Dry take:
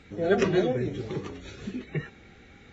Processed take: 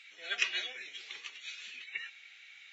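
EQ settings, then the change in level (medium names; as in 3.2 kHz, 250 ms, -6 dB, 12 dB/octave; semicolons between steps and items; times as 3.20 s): resonant high-pass 2.6 kHz, resonance Q 2.4; 0.0 dB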